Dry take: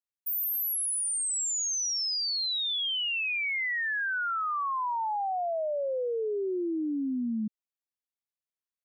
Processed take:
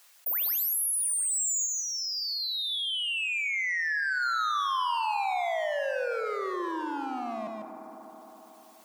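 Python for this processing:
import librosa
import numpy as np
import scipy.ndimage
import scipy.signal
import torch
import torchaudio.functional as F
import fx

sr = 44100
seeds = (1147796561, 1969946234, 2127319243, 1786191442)

y = fx.dereverb_blind(x, sr, rt60_s=0.75)
y = 10.0 ** (-31.5 / 20.0) * np.tanh(y / 10.0 ** (-31.5 / 20.0))
y = fx.rider(y, sr, range_db=10, speed_s=0.5)
y = fx.lowpass(y, sr, hz=2000.0, slope=6, at=(1.65, 4.21), fade=0.02)
y = np.clip(10.0 ** (34.0 / 20.0) * y, -1.0, 1.0) / 10.0 ** (34.0 / 20.0)
y = scipy.signal.sosfilt(scipy.signal.butter(2, 700.0, 'highpass', fs=sr, output='sos'), y)
y = y + 10.0 ** (-6.0 / 20.0) * np.pad(y, (int(147 * sr / 1000.0), 0))[:len(y)]
y = fx.rev_fdn(y, sr, rt60_s=2.6, lf_ratio=0.85, hf_ratio=0.35, size_ms=17.0, drr_db=10.0)
y = fx.env_flatten(y, sr, amount_pct=50)
y = F.gain(torch.from_numpy(y), 5.5).numpy()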